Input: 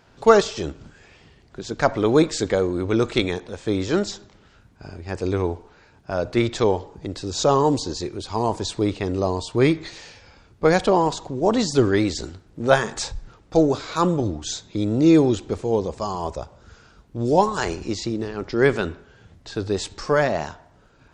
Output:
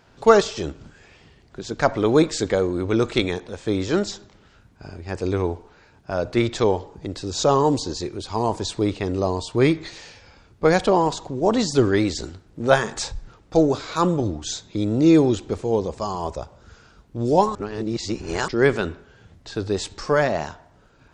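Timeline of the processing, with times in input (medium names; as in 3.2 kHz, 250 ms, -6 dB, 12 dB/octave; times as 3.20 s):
17.55–18.48 s: reverse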